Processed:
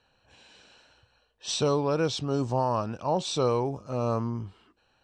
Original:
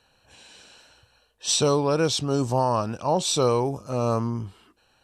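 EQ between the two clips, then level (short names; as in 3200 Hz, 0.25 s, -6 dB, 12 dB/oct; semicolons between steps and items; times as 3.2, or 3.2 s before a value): air absorption 92 m; -3.5 dB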